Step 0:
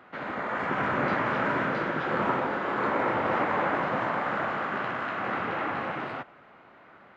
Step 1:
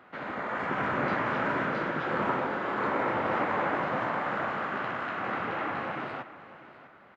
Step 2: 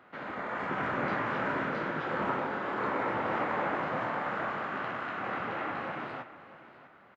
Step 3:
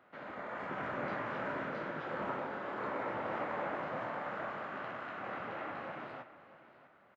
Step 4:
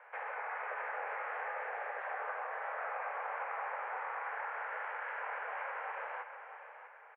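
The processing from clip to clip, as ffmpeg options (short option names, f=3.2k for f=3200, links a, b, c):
-af "aecho=1:1:649:0.158,volume=-2dB"
-filter_complex "[0:a]asplit=2[a][b];[b]adelay=26,volume=-10.5dB[c];[a][c]amix=inputs=2:normalize=0,volume=-3dB"
-af "equalizer=f=600:t=o:w=0.39:g=4.5,volume=-7.5dB"
-af "acompressor=threshold=-46dB:ratio=4,highpass=f=230:t=q:w=0.5412,highpass=f=230:t=q:w=1.307,lowpass=f=2.3k:t=q:w=0.5176,lowpass=f=2.3k:t=q:w=0.7071,lowpass=f=2.3k:t=q:w=1.932,afreqshift=240,volume=8dB"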